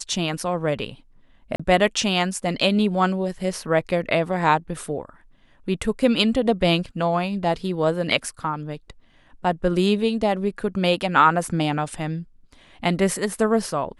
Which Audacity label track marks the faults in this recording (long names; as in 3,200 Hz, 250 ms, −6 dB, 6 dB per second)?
1.560000	1.590000	drop-out 35 ms